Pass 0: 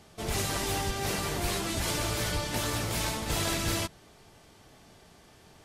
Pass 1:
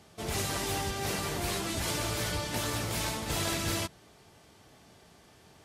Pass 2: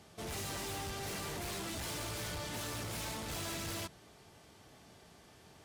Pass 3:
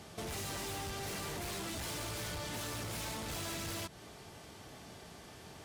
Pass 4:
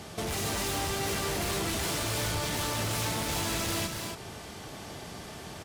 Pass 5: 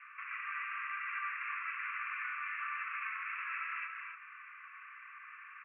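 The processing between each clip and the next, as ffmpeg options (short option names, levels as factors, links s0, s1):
-af "highpass=54,volume=0.841"
-af "asoftclip=type=tanh:threshold=0.015,volume=0.841"
-af "acompressor=threshold=0.00447:ratio=6,volume=2.24"
-af "aecho=1:1:242|277:0.447|0.447,volume=2.51"
-af "asuperpass=centerf=1700:order=20:qfactor=1.1"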